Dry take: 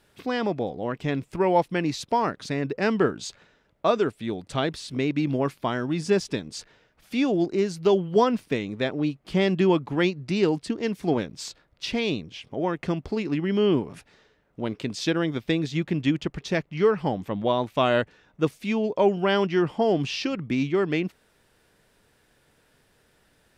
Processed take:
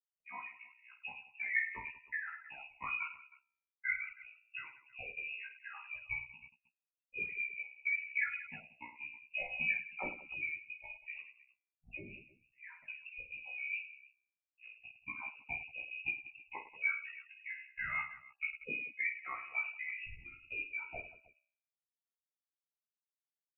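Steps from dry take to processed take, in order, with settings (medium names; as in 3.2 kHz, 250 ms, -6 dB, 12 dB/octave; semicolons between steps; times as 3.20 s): expander on every frequency bin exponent 3; bass shelf 340 Hz -3 dB; de-hum 172.9 Hz, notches 12; in parallel at -3 dB: compression, threshold -38 dBFS, peak gain reduction 17 dB; on the sum: ring modulator 33 Hz; on a send: reverse bouncing-ball echo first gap 20 ms, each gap 1.6×, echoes 5; on the sum: frequency inversion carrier 2.7 kHz; random flutter of the level, depth 55%; trim -6 dB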